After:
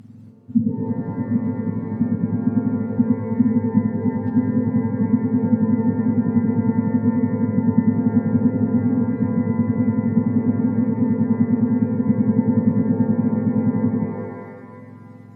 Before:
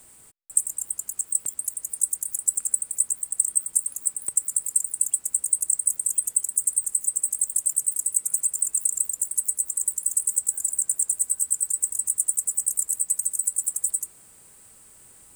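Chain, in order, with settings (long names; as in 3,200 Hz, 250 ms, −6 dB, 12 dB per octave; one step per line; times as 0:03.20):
frequency axis turned over on the octave scale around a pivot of 1,400 Hz
treble cut that deepens with the level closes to 1,400 Hz, closed at −13 dBFS
reverb with rising layers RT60 2 s, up +12 semitones, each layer −8 dB, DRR 5 dB
level −3.5 dB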